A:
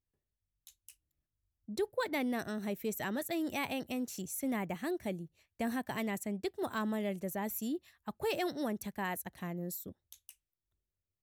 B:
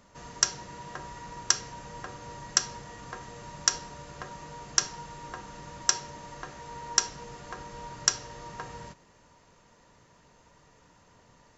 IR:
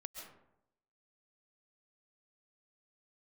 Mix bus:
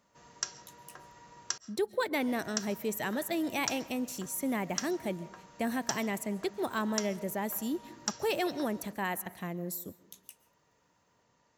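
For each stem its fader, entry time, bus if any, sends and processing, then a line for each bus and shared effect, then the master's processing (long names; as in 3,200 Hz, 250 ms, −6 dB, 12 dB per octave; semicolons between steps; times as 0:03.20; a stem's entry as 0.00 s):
+2.0 dB, 0.00 s, send −8.5 dB, no processing
−12.0 dB, 0.00 s, muted 0:01.58–0:02.22, send −10 dB, no processing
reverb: on, RT60 0.80 s, pre-delay 95 ms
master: high-pass filter 140 Hz 6 dB per octave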